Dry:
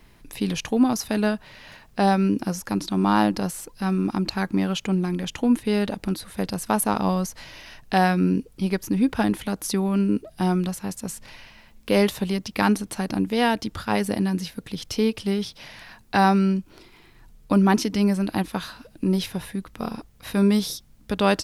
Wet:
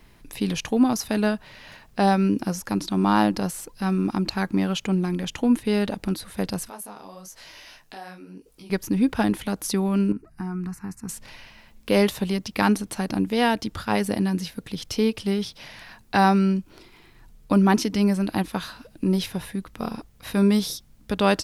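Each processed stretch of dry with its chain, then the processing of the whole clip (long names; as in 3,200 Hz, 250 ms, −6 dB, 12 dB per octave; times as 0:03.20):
0:06.69–0:08.70: downward compressor 2.5 to 1, threshold −37 dBFS + bass and treble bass −9 dB, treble +4 dB + micro pitch shift up and down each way 39 cents
0:10.12–0:11.09: low-pass filter 3,100 Hz 6 dB per octave + downward compressor 5 to 1, threshold −24 dBFS + phaser with its sweep stopped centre 1,400 Hz, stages 4
whole clip: no processing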